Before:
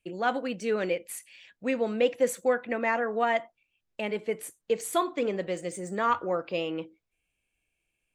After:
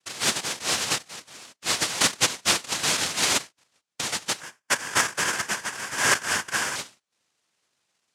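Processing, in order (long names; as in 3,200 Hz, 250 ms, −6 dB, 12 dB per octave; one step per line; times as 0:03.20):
parametric band 3,900 Hz +9 dB 2.7 octaves
cochlear-implant simulation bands 1
0:04.40–0:06.76: thirty-one-band graphic EQ 1,000 Hz +6 dB, 1,600 Hz +12 dB, 4,000 Hz −10 dB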